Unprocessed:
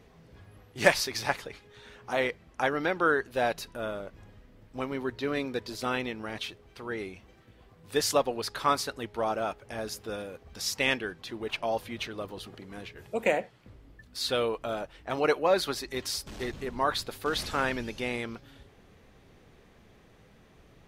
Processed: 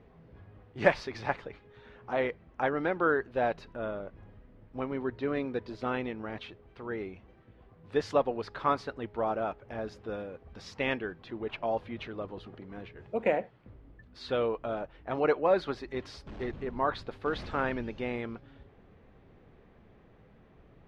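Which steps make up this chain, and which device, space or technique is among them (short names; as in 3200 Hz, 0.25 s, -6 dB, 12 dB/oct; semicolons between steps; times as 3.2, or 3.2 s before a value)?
phone in a pocket (LPF 3400 Hz 12 dB/oct; high shelf 2100 Hz -10 dB)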